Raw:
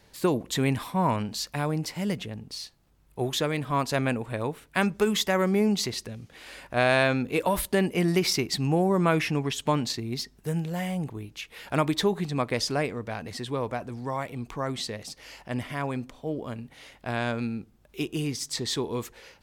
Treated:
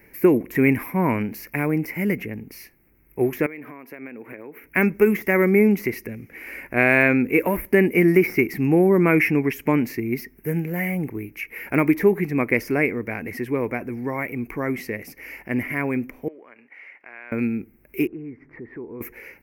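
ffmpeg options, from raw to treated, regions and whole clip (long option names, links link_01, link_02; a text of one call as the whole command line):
ffmpeg -i in.wav -filter_complex "[0:a]asettb=1/sr,asplit=3[link_01][link_02][link_03];[link_01]atrim=end=3.464[link_04];[link_02]atrim=start=3.46:end=4.64,asetpts=PTS-STARTPTS,afade=type=in:duration=0.004:curve=qsin,afade=type=out:start_time=1.176:duration=0.004:curve=qsin,highpass=250,acompressor=threshold=-39dB:ratio=12:attack=3.2:release=140:knee=1:detection=peak,equalizer=frequency=8100:width=0.74:gain=-10.5[link_05];[link_03]atrim=start=4.636[link_06];[link_04][link_05]acrossfade=duration=0.004:curve1=hsin:curve2=qsin[link_07];[link_07][link_06]acrossfade=duration=0.004:curve1=qsin:curve2=hsin,asettb=1/sr,asplit=3[link_08][link_09][link_10];[link_08]atrim=end=16.284[link_11];[link_09]atrim=start=16.28:end=17.32,asetpts=PTS-STARTPTS,afade=type=in:duration=0.004:curve=qsin,afade=type=out:start_time=1.036:duration=0.004:curve=qsin,highpass=780,lowpass=2800,acompressor=threshold=-52dB:ratio=2:attack=3.2:release=140:knee=1:detection=peak[link_12];[link_10]atrim=start=17.316[link_13];[link_11][link_12]acrossfade=duration=0.004:curve1=hsin:curve2=qsin[link_14];[link_14][link_13]acrossfade=duration=0.004:curve1=qsin:curve2=hsin,asettb=1/sr,asplit=3[link_15][link_16][link_17];[link_15]atrim=end=18.074[link_18];[link_16]atrim=start=18.07:end=19.01,asetpts=PTS-STARTPTS,afade=type=in:duration=0.004:curve=qsin,afade=type=out:start_time=0.936:duration=0.004:curve=qsin,lowpass=frequency=1600:width=0.5412,lowpass=frequency=1600:width=1.3066,acompressor=threshold=-51dB:ratio=2:attack=3.2:release=140:knee=1:detection=peak[link_19];[link_17]atrim=start=19.006[link_20];[link_18][link_19]acrossfade=duration=0.004:curve1=hsin:curve2=qsin[link_21];[link_21][link_20]acrossfade=duration=0.004:curve1=qsin:curve2=hsin,aemphasis=mode=production:type=75fm,deesser=0.4,firequalizer=gain_entry='entry(140,0);entry(250,7);entry(350,9);entry(620,-2);entry(1200,-3);entry(2200,11);entry(3500,-29);entry(5500,-16);entry(7900,-25);entry(12000,-5)':delay=0.05:min_phase=1,volume=2.5dB" out.wav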